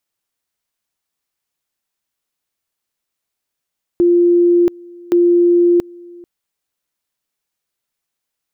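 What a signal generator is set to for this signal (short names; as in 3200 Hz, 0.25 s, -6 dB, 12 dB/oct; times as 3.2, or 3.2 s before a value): two-level tone 348 Hz -8 dBFS, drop 25.5 dB, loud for 0.68 s, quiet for 0.44 s, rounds 2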